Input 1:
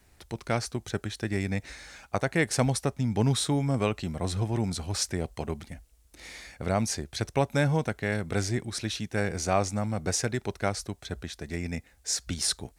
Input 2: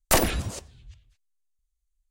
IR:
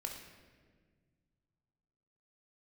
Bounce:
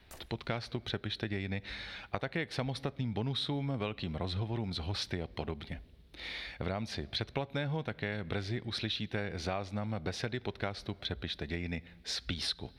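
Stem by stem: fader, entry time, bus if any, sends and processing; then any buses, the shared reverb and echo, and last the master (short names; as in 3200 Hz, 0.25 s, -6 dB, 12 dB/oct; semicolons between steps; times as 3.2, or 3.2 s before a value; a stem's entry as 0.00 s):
0.0 dB, 0.00 s, send -19 dB, resonant high shelf 5200 Hz -12.5 dB, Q 3
-17.5 dB, 0.00 s, no send, compressor 2:1, threshold -30 dBFS, peak gain reduction 8.5 dB; auto duck -18 dB, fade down 0.35 s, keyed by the first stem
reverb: on, RT60 1.6 s, pre-delay 18 ms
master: compressor 6:1, threshold -32 dBFS, peak gain reduction 13.5 dB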